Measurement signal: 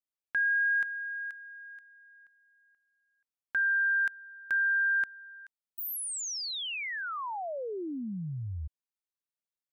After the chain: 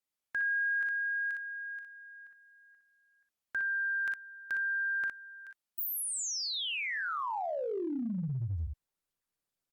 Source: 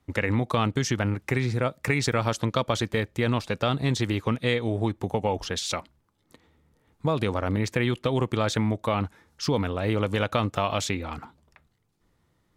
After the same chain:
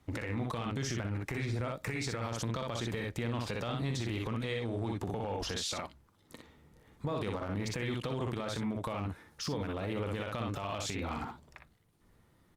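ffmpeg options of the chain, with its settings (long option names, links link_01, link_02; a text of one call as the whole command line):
ffmpeg -i in.wav -af "aecho=1:1:43|60:0.266|0.531,alimiter=limit=-17dB:level=0:latency=1:release=347,acompressor=threshold=-34dB:ratio=4:attack=0.12:release=37:knee=1:detection=rms,volume=3dB" -ar 48000 -c:a libopus -b:a 48k out.opus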